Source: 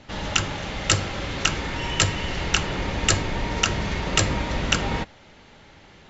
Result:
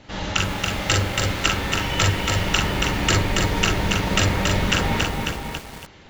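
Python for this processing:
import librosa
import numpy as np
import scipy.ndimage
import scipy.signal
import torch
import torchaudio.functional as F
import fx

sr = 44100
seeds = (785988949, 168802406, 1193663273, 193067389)

y = fx.dynamic_eq(x, sr, hz=6900.0, q=0.9, threshold_db=-38.0, ratio=4.0, max_db=-5)
y = fx.echo_multitap(y, sr, ms=(42, 52, 544), db=(-4.0, -8.0, -7.0))
y = fx.echo_crushed(y, sr, ms=279, feedback_pct=35, bits=6, wet_db=-3.0)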